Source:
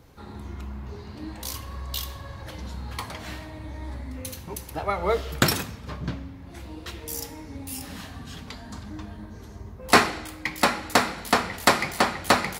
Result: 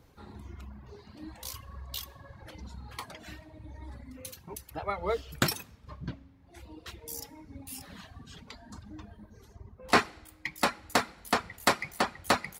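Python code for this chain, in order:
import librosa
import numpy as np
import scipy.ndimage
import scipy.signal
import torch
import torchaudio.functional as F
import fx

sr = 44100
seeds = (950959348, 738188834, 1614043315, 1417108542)

y = fx.dereverb_blind(x, sr, rt60_s=1.9)
y = fx.high_shelf(y, sr, hz=9000.0, db=-11.5, at=(9.53, 9.99))
y = y * librosa.db_to_amplitude(-6.0)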